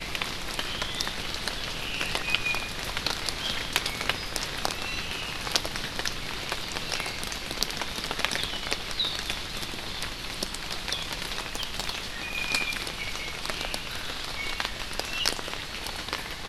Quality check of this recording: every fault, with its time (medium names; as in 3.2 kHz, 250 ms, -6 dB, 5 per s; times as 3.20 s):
11.55–11.90 s: clipped -19 dBFS